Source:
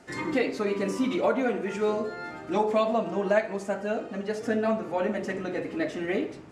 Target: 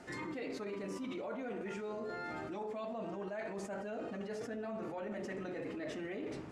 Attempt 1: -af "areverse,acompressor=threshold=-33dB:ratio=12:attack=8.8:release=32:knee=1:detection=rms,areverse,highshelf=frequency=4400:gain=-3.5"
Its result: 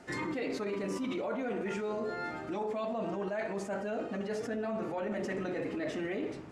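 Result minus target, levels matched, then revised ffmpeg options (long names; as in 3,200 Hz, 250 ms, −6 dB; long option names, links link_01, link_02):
downward compressor: peak gain reduction −6.5 dB
-af "areverse,acompressor=threshold=-40dB:ratio=12:attack=8.8:release=32:knee=1:detection=rms,areverse,highshelf=frequency=4400:gain=-3.5"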